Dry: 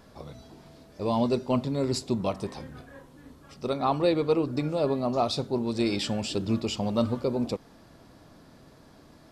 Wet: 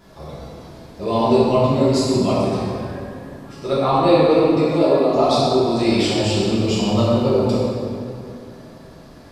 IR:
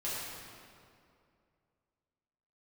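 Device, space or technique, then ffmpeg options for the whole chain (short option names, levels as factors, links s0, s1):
stairwell: -filter_complex "[0:a]asettb=1/sr,asplit=3[s0][s1][s2];[s0]atrim=end=4.464[s3];[s1]atrim=start=4.46:end=5.16,asetpts=PTS-STARTPTS,afade=t=in:d=0.004:c=qsin,afade=t=out:st=0.696:d=0.004:c=qsin,highpass=f=190:w=0.5412,highpass=f=190:w=1.3066[s4];[s2]atrim=start=5.156[s5];[s3][s4]acrossfade=d=0.004:c1=hsin:c2=qsin[s6];[s6][s5]acrossfade=d=0.004:c1=qsin:c2=hsin[s7];[1:a]atrim=start_sample=2205[s8];[s7][s8]afir=irnorm=-1:irlink=0,volume=2"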